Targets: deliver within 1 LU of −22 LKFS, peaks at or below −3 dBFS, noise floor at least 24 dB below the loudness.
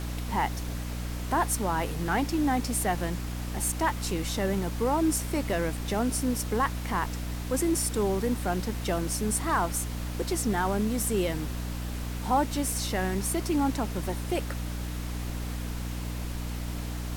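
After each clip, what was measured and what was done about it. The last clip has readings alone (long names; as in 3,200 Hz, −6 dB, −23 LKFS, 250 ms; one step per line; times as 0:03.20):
mains hum 60 Hz; hum harmonics up to 300 Hz; level of the hum −31 dBFS; background noise floor −34 dBFS; target noise floor −54 dBFS; integrated loudness −29.5 LKFS; sample peak −14.0 dBFS; target loudness −22.0 LKFS
→ hum removal 60 Hz, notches 5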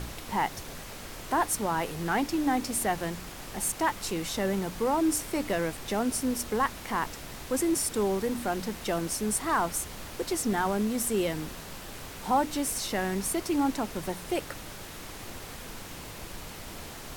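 mains hum none found; background noise floor −43 dBFS; target noise floor −54 dBFS
→ noise reduction from a noise print 11 dB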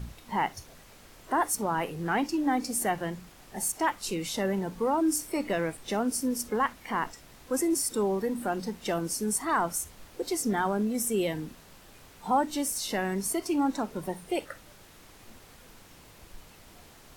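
background noise floor −53 dBFS; target noise floor −54 dBFS
→ noise reduction from a noise print 6 dB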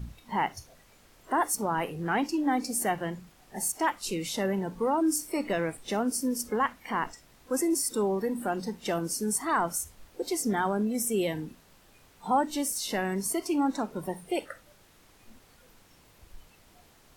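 background noise floor −59 dBFS; integrated loudness −29.5 LKFS; sample peak −15.0 dBFS; target loudness −22.0 LKFS
→ level +7.5 dB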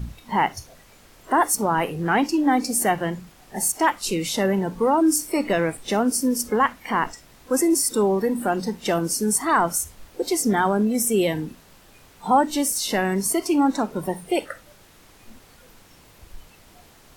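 integrated loudness −22.0 LKFS; sample peak −7.5 dBFS; background noise floor −52 dBFS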